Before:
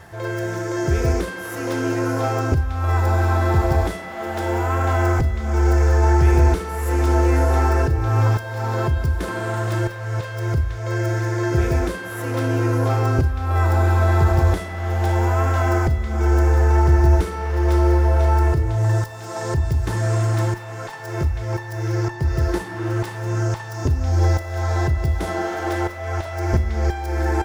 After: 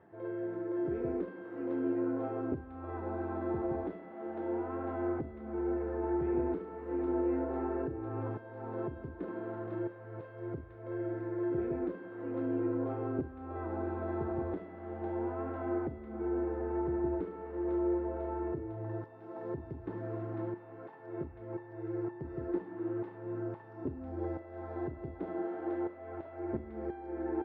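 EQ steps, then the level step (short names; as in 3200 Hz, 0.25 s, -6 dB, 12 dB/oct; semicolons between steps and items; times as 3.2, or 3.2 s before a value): band-pass 290 Hz, Q 1.8; air absorption 490 m; tilt +3 dB/oct; -1.5 dB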